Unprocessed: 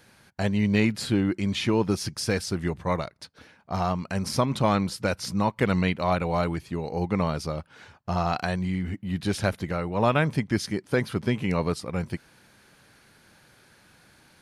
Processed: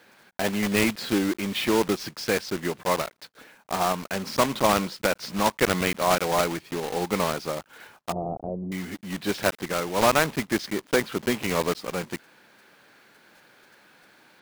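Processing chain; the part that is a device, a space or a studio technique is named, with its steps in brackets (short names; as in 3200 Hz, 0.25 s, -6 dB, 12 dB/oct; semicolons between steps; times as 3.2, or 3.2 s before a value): early digital voice recorder (BPF 270–3900 Hz; block floating point 3-bit); 8.12–8.72 inverse Chebyshev low-pass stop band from 1600 Hz, stop band 50 dB; gain +3 dB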